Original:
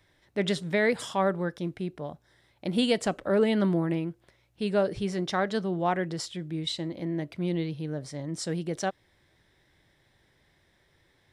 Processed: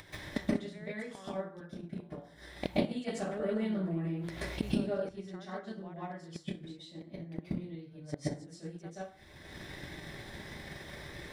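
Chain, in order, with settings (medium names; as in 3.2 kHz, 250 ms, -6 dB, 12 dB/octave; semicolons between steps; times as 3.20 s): peaking EQ 190 Hz +4.5 dB 2.3 oct; upward compressor, threshold -45 dBFS; inverted gate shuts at -26 dBFS, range -28 dB; bass shelf 360 Hz -4 dB; plate-style reverb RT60 0.53 s, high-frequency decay 0.65×, pre-delay 120 ms, DRR -9 dB; transient shaper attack +7 dB, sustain -2 dB; 3.08–5.09 s: level flattener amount 50%; trim +1 dB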